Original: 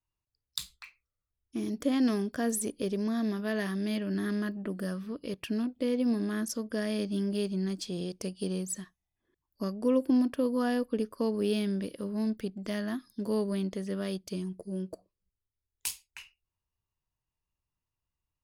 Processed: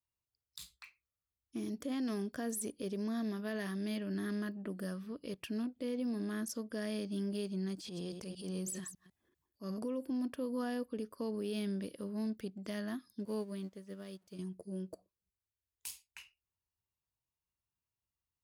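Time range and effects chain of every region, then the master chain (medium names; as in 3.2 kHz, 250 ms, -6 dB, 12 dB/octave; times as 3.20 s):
7.75–9.83 s: chunks repeated in reverse 150 ms, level -14 dB + transient shaper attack -10 dB, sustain +8 dB
13.25–14.39 s: jump at every zero crossing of -46.5 dBFS + upward expansion 2.5:1, over -39 dBFS
whole clip: high-pass 50 Hz; treble shelf 8.6 kHz +3.5 dB; peak limiter -24 dBFS; trim -6 dB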